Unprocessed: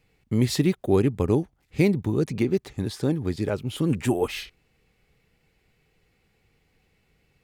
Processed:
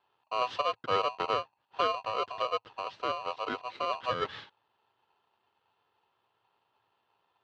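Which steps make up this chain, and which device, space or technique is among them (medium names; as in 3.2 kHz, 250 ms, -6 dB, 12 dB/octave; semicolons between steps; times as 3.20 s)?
ring modulator pedal into a guitar cabinet (polarity switched at an audio rate 870 Hz; cabinet simulation 98–3600 Hz, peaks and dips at 110 Hz +6 dB, 730 Hz -5 dB, 2.3 kHz -7 dB); trim -7 dB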